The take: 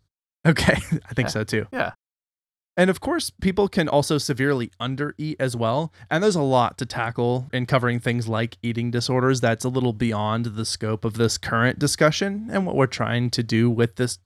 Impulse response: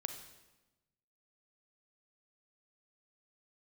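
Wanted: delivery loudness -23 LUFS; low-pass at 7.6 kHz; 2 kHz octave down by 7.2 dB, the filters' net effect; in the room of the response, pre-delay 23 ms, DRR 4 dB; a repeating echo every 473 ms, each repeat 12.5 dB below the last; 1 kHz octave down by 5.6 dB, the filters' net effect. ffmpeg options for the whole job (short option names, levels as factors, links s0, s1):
-filter_complex "[0:a]lowpass=7600,equalizer=f=1000:t=o:g=-6,equalizer=f=2000:t=o:g=-7,aecho=1:1:473|946|1419:0.237|0.0569|0.0137,asplit=2[s0][s1];[1:a]atrim=start_sample=2205,adelay=23[s2];[s1][s2]afir=irnorm=-1:irlink=0,volume=0.708[s3];[s0][s3]amix=inputs=2:normalize=0,volume=0.944"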